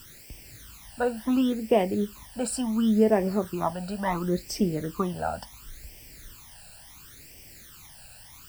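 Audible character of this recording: a quantiser's noise floor 8-bit, dither triangular; phasing stages 12, 0.71 Hz, lowest notch 350–1300 Hz

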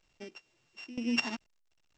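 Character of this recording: a buzz of ramps at a fixed pitch in blocks of 16 samples; random-step tremolo 4.1 Hz, depth 90%; A-law

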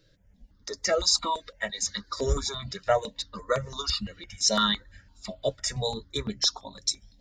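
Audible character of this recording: notches that jump at a steady rate 5.9 Hz 230–3700 Hz

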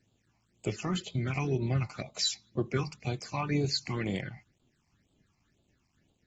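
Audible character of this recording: tremolo saw down 3.7 Hz, depth 35%; a quantiser's noise floor 12-bit, dither none; phasing stages 8, 2 Hz, lowest notch 450–1800 Hz; AAC

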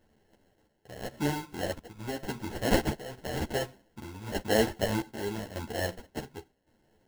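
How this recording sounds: a quantiser's noise floor 12-bit, dither triangular; chopped level 0.9 Hz, depth 60%, duty 60%; aliases and images of a low sample rate 1200 Hz, jitter 0%; a shimmering, thickened sound

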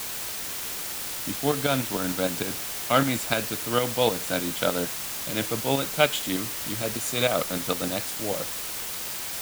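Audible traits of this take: tremolo saw up 6.6 Hz, depth 60%; a quantiser's noise floor 6-bit, dither triangular

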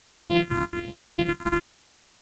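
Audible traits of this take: a buzz of ramps at a fixed pitch in blocks of 128 samples; phasing stages 4, 1.2 Hz, lowest notch 540–1900 Hz; a quantiser's noise floor 10-bit, dither triangular; G.722

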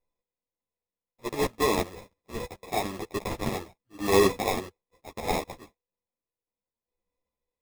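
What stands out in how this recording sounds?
a buzz of ramps at a fixed pitch in blocks of 8 samples; tremolo saw down 1.7 Hz, depth 35%; aliases and images of a low sample rate 1500 Hz, jitter 0%; a shimmering, thickened sound

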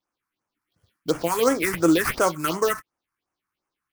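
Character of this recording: aliases and images of a low sample rate 7500 Hz, jitter 20%; phasing stages 4, 2.8 Hz, lowest notch 520–3900 Hz

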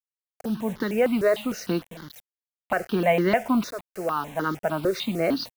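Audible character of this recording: tremolo saw up 0.54 Hz, depth 80%; a quantiser's noise floor 8-bit, dither none; notches that jump at a steady rate 6.6 Hz 820–2500 Hz

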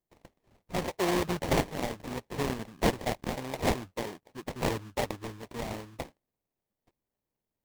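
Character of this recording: aliases and images of a low sample rate 1400 Hz, jitter 20%; Nellymoser

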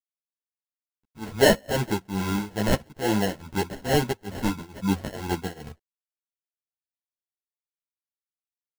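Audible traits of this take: aliases and images of a low sample rate 1200 Hz, jitter 0%; tremolo triangle 2.3 Hz, depth 95%; a quantiser's noise floor 12-bit, dither none; a shimmering, thickened sound

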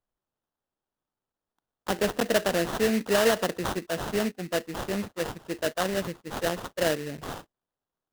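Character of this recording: aliases and images of a low sample rate 2300 Hz, jitter 20%

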